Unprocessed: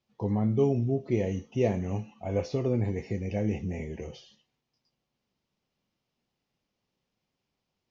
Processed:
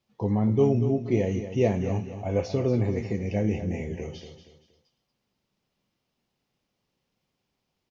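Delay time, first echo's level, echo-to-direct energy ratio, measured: 235 ms, -10.5 dB, -10.0 dB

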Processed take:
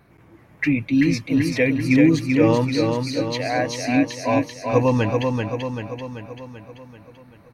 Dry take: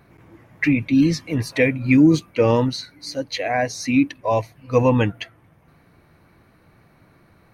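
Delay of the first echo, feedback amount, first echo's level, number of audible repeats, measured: 387 ms, 56%, -4.0 dB, 7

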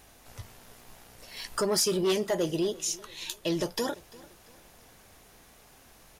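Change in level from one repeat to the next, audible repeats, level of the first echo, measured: -8.0 dB, 2, -21.5 dB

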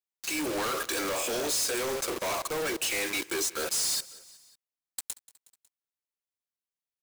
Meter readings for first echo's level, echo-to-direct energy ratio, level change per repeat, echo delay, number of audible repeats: -20.5 dB, -19.0 dB, -4.5 dB, 183 ms, 3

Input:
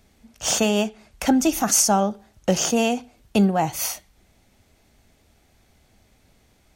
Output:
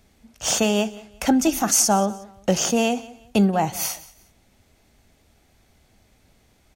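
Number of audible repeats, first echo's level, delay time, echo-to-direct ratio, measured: 2, -19.5 dB, 180 ms, -19.0 dB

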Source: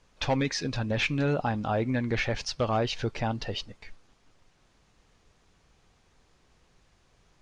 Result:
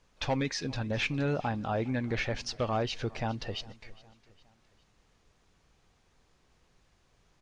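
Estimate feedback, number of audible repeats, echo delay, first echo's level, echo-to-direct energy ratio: 48%, 3, 409 ms, -22.0 dB, -21.0 dB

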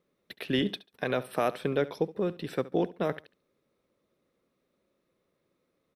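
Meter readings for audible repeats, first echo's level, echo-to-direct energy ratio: 2, -18.0 dB, -18.0 dB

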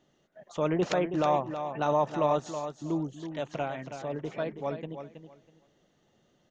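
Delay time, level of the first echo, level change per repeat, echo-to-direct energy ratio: 323 ms, -9.0 dB, -14.0 dB, -9.0 dB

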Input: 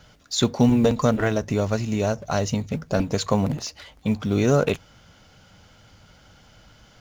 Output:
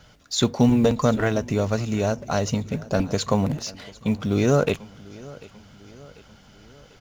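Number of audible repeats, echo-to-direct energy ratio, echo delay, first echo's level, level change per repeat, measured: 3, -19.5 dB, 743 ms, -21.0 dB, -5.5 dB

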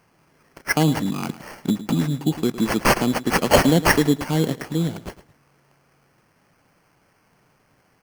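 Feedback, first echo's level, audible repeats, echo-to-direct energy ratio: 22%, -15.0 dB, 2, -15.0 dB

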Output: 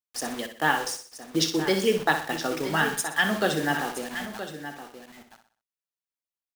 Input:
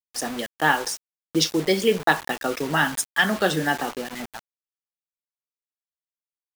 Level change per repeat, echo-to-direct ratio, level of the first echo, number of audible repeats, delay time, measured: no regular repeats, -6.5 dB, -9.0 dB, 7, 62 ms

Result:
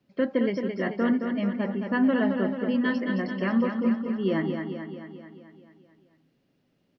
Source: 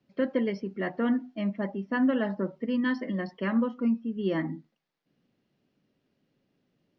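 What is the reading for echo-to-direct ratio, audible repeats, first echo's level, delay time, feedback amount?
-4.0 dB, 7, -6.0 dB, 219 ms, 59%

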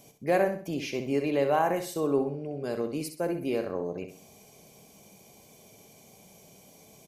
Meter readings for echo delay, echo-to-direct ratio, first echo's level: 64 ms, -8.0 dB, -8.5 dB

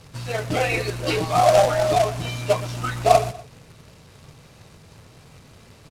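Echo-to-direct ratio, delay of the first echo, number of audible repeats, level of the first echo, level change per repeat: -16.5 dB, 121 ms, 2, -17.0 dB, -8.5 dB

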